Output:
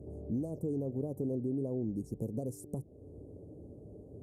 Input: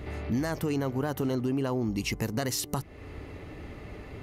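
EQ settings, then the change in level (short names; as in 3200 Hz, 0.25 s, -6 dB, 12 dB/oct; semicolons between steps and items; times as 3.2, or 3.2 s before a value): HPF 91 Hz; elliptic band-stop 540–8900 Hz, stop band 80 dB; air absorption 62 m; -4.5 dB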